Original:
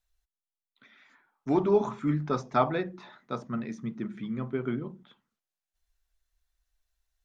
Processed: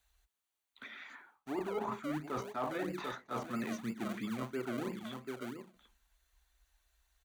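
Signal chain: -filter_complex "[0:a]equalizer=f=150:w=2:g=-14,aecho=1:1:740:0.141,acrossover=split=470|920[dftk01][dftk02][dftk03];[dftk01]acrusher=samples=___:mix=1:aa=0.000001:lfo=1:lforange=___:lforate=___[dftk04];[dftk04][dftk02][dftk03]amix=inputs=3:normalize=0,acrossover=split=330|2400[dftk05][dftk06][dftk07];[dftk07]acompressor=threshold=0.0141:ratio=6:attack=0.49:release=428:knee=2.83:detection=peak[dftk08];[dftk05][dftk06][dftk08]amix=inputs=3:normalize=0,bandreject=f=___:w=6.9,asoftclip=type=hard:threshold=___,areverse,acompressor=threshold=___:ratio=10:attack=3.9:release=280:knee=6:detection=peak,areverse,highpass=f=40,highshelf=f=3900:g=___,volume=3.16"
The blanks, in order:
35, 35, 3, 5200, 0.158, 0.00708, -3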